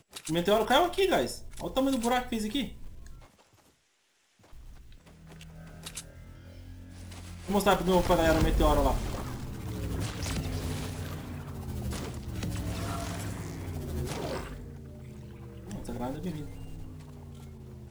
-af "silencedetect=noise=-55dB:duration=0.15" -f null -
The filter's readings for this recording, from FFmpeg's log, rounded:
silence_start: 3.71
silence_end: 4.40 | silence_duration: 0.69